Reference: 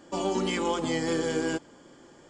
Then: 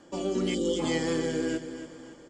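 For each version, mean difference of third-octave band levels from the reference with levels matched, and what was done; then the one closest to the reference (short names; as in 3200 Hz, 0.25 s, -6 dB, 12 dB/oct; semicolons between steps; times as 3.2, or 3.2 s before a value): 3.5 dB: spectral gain 0.54–0.8, 540–2900 Hz -27 dB; rotary speaker horn 0.9 Hz; feedback echo 0.282 s, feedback 43%, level -11 dB; gain +1.5 dB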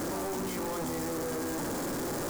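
14.0 dB: infinite clipping; bell 3000 Hz -11.5 dB 1.3 oct; gain -2.5 dB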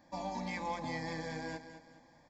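5.0 dB: bell 7700 Hz -5.5 dB 1.1 oct; fixed phaser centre 2000 Hz, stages 8; on a send: feedback echo 0.209 s, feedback 38%, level -11 dB; on the sum: gain -5.5 dB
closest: first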